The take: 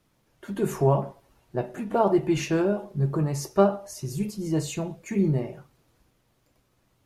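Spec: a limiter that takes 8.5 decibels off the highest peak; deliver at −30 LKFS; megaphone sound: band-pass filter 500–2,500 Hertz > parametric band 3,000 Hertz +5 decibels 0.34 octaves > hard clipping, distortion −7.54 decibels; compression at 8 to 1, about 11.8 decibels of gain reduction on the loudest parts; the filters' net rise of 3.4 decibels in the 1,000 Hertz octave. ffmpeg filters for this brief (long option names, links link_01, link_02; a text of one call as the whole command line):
ffmpeg -i in.wav -af "equalizer=frequency=1000:width_type=o:gain=5,acompressor=threshold=-25dB:ratio=8,alimiter=limit=-23dB:level=0:latency=1,highpass=500,lowpass=2500,equalizer=frequency=3000:width_type=o:width=0.34:gain=5,asoftclip=type=hard:threshold=-38dB,volume=13.5dB" out.wav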